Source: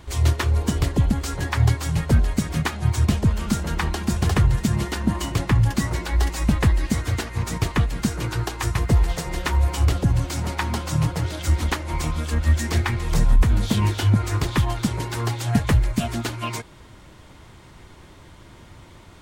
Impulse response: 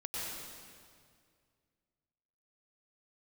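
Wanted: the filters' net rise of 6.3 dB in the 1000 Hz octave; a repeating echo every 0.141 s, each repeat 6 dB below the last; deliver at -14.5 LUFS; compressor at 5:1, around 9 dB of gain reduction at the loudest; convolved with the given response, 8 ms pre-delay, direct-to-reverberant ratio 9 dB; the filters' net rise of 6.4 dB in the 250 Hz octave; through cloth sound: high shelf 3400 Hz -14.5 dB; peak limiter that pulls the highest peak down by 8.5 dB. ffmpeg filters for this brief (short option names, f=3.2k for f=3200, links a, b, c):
-filter_complex "[0:a]equalizer=f=250:t=o:g=8,equalizer=f=1k:t=o:g=8.5,acompressor=threshold=-20dB:ratio=5,alimiter=limit=-15.5dB:level=0:latency=1,aecho=1:1:141|282|423|564|705|846:0.501|0.251|0.125|0.0626|0.0313|0.0157,asplit=2[a][b];[1:a]atrim=start_sample=2205,adelay=8[c];[b][c]afir=irnorm=-1:irlink=0,volume=-11.5dB[d];[a][d]amix=inputs=2:normalize=0,highshelf=f=3.4k:g=-14.5,volume=11.5dB"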